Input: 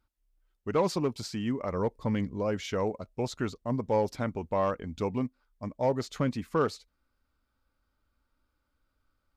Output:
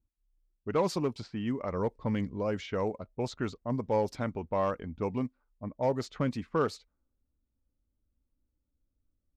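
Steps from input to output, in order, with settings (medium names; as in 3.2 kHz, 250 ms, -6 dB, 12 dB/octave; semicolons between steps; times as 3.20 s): level-controlled noise filter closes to 340 Hz, open at -25.5 dBFS; trim -1.5 dB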